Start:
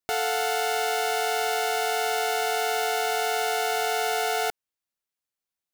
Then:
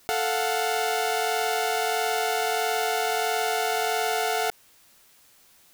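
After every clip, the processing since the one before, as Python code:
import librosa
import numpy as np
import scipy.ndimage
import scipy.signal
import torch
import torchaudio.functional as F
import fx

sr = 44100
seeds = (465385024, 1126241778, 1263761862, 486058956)

y = fx.env_flatten(x, sr, amount_pct=50)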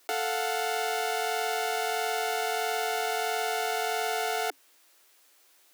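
y = scipy.signal.sosfilt(scipy.signal.cheby1(10, 1.0, 280.0, 'highpass', fs=sr, output='sos'), x)
y = y * librosa.db_to_amplitude(-3.5)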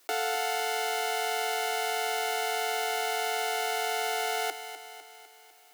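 y = fx.echo_feedback(x, sr, ms=251, feedback_pct=56, wet_db=-10.5)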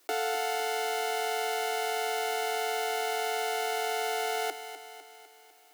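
y = fx.low_shelf(x, sr, hz=310.0, db=12.0)
y = y * librosa.db_to_amplitude(-2.5)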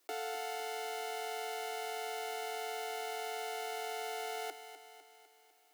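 y = fx.notch(x, sr, hz=1500.0, q=30.0)
y = y * librosa.db_to_amplitude(-9.0)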